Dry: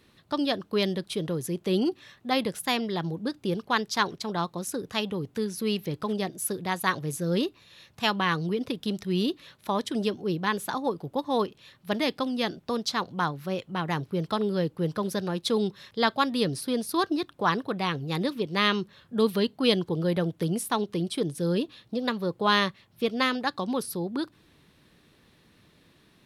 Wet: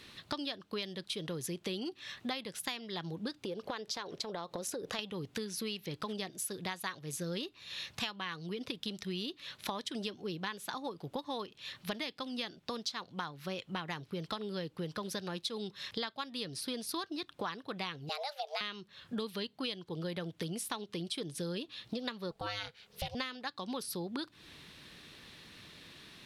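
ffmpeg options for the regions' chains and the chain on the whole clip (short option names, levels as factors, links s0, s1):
-filter_complex "[0:a]asettb=1/sr,asplit=3[s0][s1][s2];[s0]atrim=end=3.444[s3];[s1]atrim=start=3.44:end=4.99,asetpts=PTS-STARTPTS,afade=t=in:d=0.004:c=qsin,afade=t=out:st=1.546:d=0.004:c=qsin,equalizer=f=530:t=o:w=1.2:g=12.5,acompressor=threshold=0.02:ratio=3:attack=3.2:release=140:knee=1:detection=peak[s4];[s2]atrim=start=4.986[s5];[s3][s4]acrossfade=d=0.004:c1=hsin:c2=qsin[s6];[s6][s5]acrossfade=d=0.004:c1=qsin:c2=hsin,asettb=1/sr,asplit=3[s7][s8][s9];[s7]atrim=end=18.094[s10];[s8]atrim=start=18.09:end=18.61,asetpts=PTS-STARTPTS,afade=t=in:d=0.004:c=qsin,afade=t=out:st=0.516:d=0.004:c=qsin,lowshelf=f=300:t=q:w=3:g=-6.5,acrossover=split=280|3000[s11][s12][s13];[s12]acompressor=threshold=0.0398:ratio=3:attack=3.2:release=140:knee=2.83:detection=peak[s14];[s11][s14][s13]amix=inputs=3:normalize=0,afreqshift=290[s15];[s9]atrim=start=18.606[s16];[s10][s15]acrossfade=d=0.004:c1=hsin:c2=qsin[s17];[s17][s16]acrossfade=d=0.004:c1=qsin:c2=hsin,asettb=1/sr,asplit=3[s18][s19][s20];[s18]atrim=end=22.314[s21];[s19]atrim=start=22.31:end=23.15,asetpts=PTS-STARTPTS,afade=t=in:d=0.004:c=qsin,afade=t=out:st=0.836:d=0.004:c=qsin,bass=f=250:g=0,treble=f=4000:g=4,acompressor=threshold=0.0501:ratio=2:attack=3.2:release=140:knee=1:detection=peak,aeval=exprs='val(0)*sin(2*PI*310*n/s)':c=same[s22];[s20]atrim=start=23.146[s23];[s21][s22]acrossfade=d=0.004:c1=hsin:c2=qsin[s24];[s24][s23]acrossfade=d=0.004:c1=qsin:c2=hsin,equalizer=f=3700:w=0.4:g=10,acompressor=threshold=0.0141:ratio=12,volume=1.19"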